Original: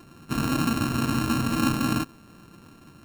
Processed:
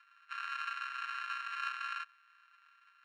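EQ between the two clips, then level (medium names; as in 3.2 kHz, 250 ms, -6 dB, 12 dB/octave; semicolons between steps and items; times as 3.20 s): steep high-pass 1.4 kHz 36 dB/octave; low-pass 1.9 kHz 12 dB/octave; -1.0 dB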